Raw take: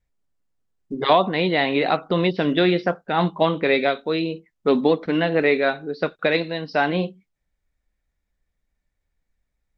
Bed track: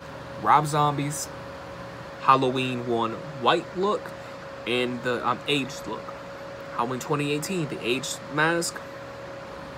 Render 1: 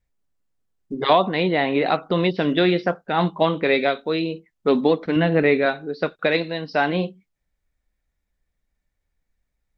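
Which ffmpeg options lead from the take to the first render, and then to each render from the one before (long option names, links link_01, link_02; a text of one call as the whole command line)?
ffmpeg -i in.wav -filter_complex "[0:a]asettb=1/sr,asplit=3[link_01][link_02][link_03];[link_01]atrim=end=1.434[link_04];[link_02]atrim=start=1.43:end=1.86,asetpts=PTS-STARTPTS,afade=type=in:duration=0.004:curve=qsin,afade=type=out:start_time=0.426:duration=0.004:curve=qsin,aemphasis=mode=reproduction:type=75fm[link_05];[link_03]atrim=start=1.856[link_06];[link_04][link_05]acrossfade=duration=0.004:curve1=hsin:curve2=qsin[link_07];[link_07][link_06]acrossfade=duration=0.004:curve1=qsin:curve2=hsin,asettb=1/sr,asplit=3[link_08][link_09][link_10];[link_08]atrim=end=5.164[link_11];[link_09]atrim=start=5.16:end=5.66,asetpts=PTS-STARTPTS,afade=type=in:duration=0.004:curve=qsin,afade=type=out:start_time=0.496:duration=0.004:curve=qsin,bass=frequency=250:gain=8,treble=frequency=4000:gain=-7[link_12];[link_10]atrim=start=5.656[link_13];[link_11][link_12]acrossfade=duration=0.004:curve1=hsin:curve2=qsin[link_14];[link_14][link_13]acrossfade=duration=0.004:curve1=qsin:curve2=hsin" out.wav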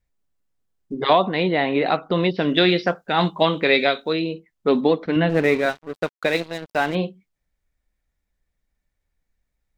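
ffmpeg -i in.wav -filter_complex "[0:a]asettb=1/sr,asplit=3[link_01][link_02][link_03];[link_01]atrim=end=2.544[link_04];[link_02]atrim=start=2.54:end=4.13,asetpts=PTS-STARTPTS,afade=type=in:duration=0.004:curve=qsin,afade=type=out:start_time=1.586:duration=0.004:curve=qsin,highshelf=frequency=2900:gain=10.5[link_05];[link_03]atrim=start=4.126[link_06];[link_04][link_05]acrossfade=duration=0.004:curve1=hsin:curve2=qsin[link_07];[link_07][link_06]acrossfade=duration=0.004:curve1=qsin:curve2=hsin,asettb=1/sr,asplit=3[link_08][link_09][link_10];[link_08]atrim=end=5.294[link_11];[link_09]atrim=start=5.29:end=6.95,asetpts=PTS-STARTPTS,afade=type=in:duration=0.004:curve=qsin,afade=type=out:start_time=1.656:duration=0.004:curve=qsin,aeval=exprs='sgn(val(0))*max(abs(val(0))-0.0224,0)':channel_layout=same[link_12];[link_10]atrim=start=6.946[link_13];[link_11][link_12]acrossfade=duration=0.004:curve1=hsin:curve2=qsin[link_14];[link_14][link_13]acrossfade=duration=0.004:curve1=qsin:curve2=hsin" out.wav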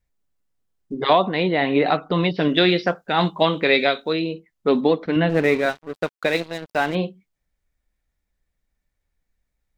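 ffmpeg -i in.wav -filter_complex "[0:a]asettb=1/sr,asplit=3[link_01][link_02][link_03];[link_01]atrim=end=1.614[link_04];[link_02]atrim=start=1.61:end=2.48,asetpts=PTS-STARTPTS,afade=type=in:duration=0.004:curve=qsin,afade=type=out:start_time=0.866:duration=0.004:curve=qsin,aecho=1:1:6.8:0.43,atrim=end_sample=38367[link_05];[link_03]atrim=start=2.476[link_06];[link_04][link_05]acrossfade=duration=0.004:curve1=hsin:curve2=qsin[link_07];[link_07][link_06]acrossfade=duration=0.004:curve1=qsin:curve2=hsin" out.wav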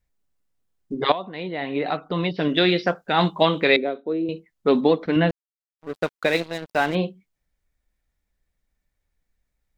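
ffmpeg -i in.wav -filter_complex "[0:a]asettb=1/sr,asplit=3[link_01][link_02][link_03];[link_01]atrim=end=3.764[link_04];[link_02]atrim=start=3.76:end=4.29,asetpts=PTS-STARTPTS,afade=type=in:duration=0.004:curve=qsin,afade=type=out:start_time=0.526:duration=0.004:curve=qsin,bandpass=frequency=340:width_type=q:width=1.4[link_05];[link_03]atrim=start=4.286[link_06];[link_04][link_05]acrossfade=duration=0.004:curve1=hsin:curve2=qsin[link_07];[link_07][link_06]acrossfade=duration=0.004:curve1=qsin:curve2=hsin,asplit=4[link_08][link_09][link_10][link_11];[link_08]atrim=end=1.12,asetpts=PTS-STARTPTS,afade=type=out:start_time=1.116:duration=0.004:curve=hsin:silence=0.177828[link_12];[link_09]atrim=start=1.12:end=5.31,asetpts=PTS-STARTPTS,afade=type=in:duration=2:silence=0.177828,afade=type=out:start_time=4.186:duration=0.004:curve=hsin[link_13];[link_10]atrim=start=5.31:end=5.79,asetpts=PTS-STARTPTS,volume=0[link_14];[link_11]atrim=start=5.79,asetpts=PTS-STARTPTS,afade=type=in:duration=0.004:curve=hsin[link_15];[link_12][link_13][link_14][link_15]concat=n=4:v=0:a=1" out.wav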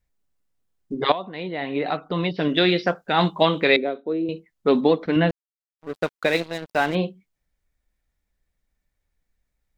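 ffmpeg -i in.wav -af anull out.wav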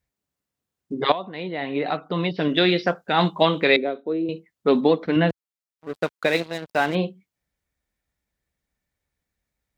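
ffmpeg -i in.wav -af "highpass=69" out.wav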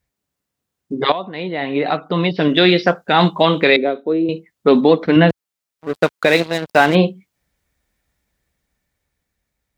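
ffmpeg -i in.wav -af "dynaudnorm=framelen=490:gausssize=7:maxgain=11.5dB,alimiter=level_in=5dB:limit=-1dB:release=50:level=0:latency=1" out.wav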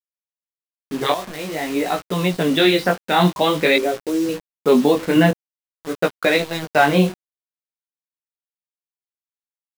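ffmpeg -i in.wav -af "acrusher=bits=4:mix=0:aa=0.000001,flanger=delay=16:depth=6.4:speed=0.48" out.wav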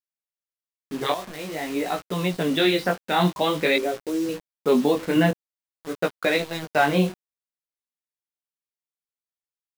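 ffmpeg -i in.wav -af "volume=-5dB" out.wav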